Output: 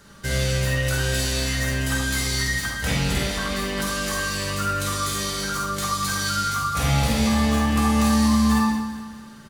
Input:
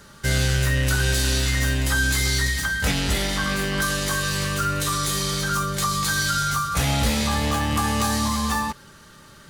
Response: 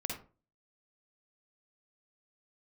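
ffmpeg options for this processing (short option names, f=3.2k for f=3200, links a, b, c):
-filter_complex "[0:a]bandreject=f=50:t=h:w=6,bandreject=f=100:t=h:w=6,aecho=1:1:205|410|615|820|1025:0.251|0.113|0.0509|0.0229|0.0103[a];[1:a]atrim=start_sample=2205[b];[a][b]afir=irnorm=-1:irlink=0,volume=-2.5dB"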